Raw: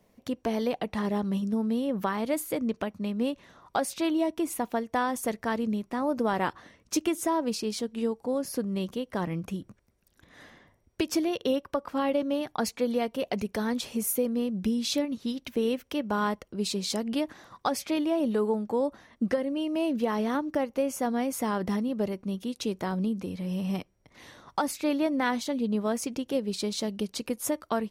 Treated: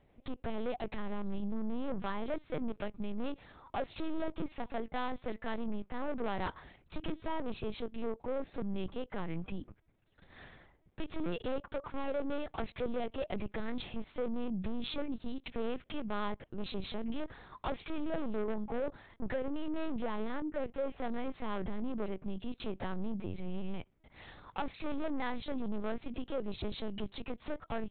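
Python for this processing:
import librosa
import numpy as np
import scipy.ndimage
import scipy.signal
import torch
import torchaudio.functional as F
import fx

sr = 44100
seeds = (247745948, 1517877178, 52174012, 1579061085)

y = 10.0 ** (-29.0 / 20.0) * np.tanh(x / 10.0 ** (-29.0 / 20.0))
y = fx.lpc_vocoder(y, sr, seeds[0], excitation='pitch_kept', order=8)
y = y * librosa.db_to_amplitude(-1.5)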